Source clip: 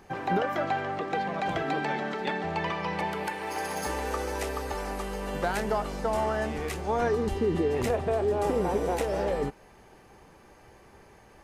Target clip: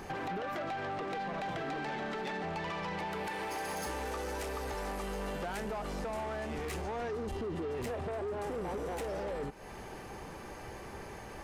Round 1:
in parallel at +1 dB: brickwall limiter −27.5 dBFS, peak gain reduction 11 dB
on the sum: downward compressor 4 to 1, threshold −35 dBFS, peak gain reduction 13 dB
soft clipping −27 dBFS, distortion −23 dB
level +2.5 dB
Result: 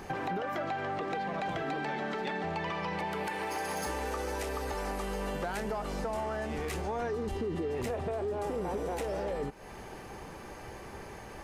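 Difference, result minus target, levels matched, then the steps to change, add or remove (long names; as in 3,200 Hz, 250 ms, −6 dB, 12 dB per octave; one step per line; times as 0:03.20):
soft clipping: distortion −11 dB
change: soft clipping −35.5 dBFS, distortion −12 dB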